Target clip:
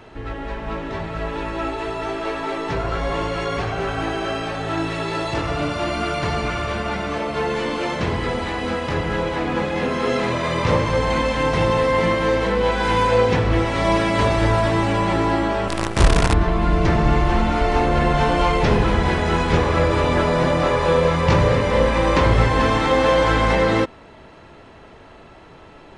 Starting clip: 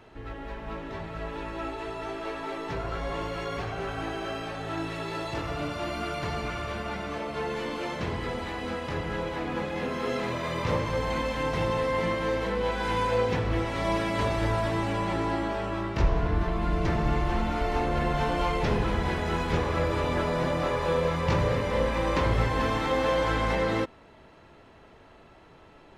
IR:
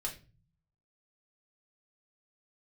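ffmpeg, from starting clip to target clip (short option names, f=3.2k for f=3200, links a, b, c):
-filter_complex "[0:a]asettb=1/sr,asplit=3[a][b][c];[a]atrim=end=15.684[d];[b]atrim=start=15.68:end=16.34,asetpts=PTS-STARTPTS,afade=t=in:d=0.004:c=qsin,afade=t=out:st=0.656:d=0.004:c=qsin,acrusher=bits=5:dc=4:mix=0:aa=0.000001[e];[c]atrim=start=16.336[f];[d][e]acrossfade=d=0.004:c1=hsin:c2=qsin[g];[g][f]acrossfade=d=0.004:c1=qsin:c2=hsin,aresample=22050,aresample=44100,volume=9dB"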